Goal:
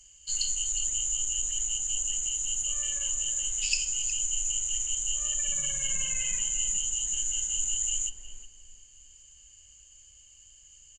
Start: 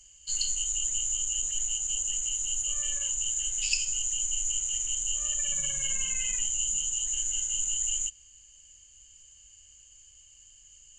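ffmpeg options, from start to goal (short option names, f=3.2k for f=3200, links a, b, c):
-filter_complex "[0:a]asplit=2[a][b];[b]adelay=363,lowpass=f=1.1k:p=1,volume=-4.5dB,asplit=2[c][d];[d]adelay=363,lowpass=f=1.1k:p=1,volume=0.37,asplit=2[e][f];[f]adelay=363,lowpass=f=1.1k:p=1,volume=0.37,asplit=2[g][h];[h]adelay=363,lowpass=f=1.1k:p=1,volume=0.37,asplit=2[i][j];[j]adelay=363,lowpass=f=1.1k:p=1,volume=0.37[k];[a][c][e][g][i][k]amix=inputs=6:normalize=0"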